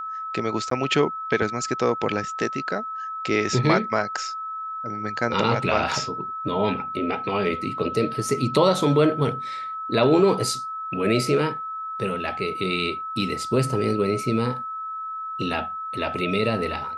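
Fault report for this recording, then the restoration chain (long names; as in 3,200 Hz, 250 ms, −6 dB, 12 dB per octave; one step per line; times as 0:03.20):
whistle 1,300 Hz −29 dBFS
0:00.70–0:00.71: drop-out 13 ms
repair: notch filter 1,300 Hz, Q 30
repair the gap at 0:00.70, 13 ms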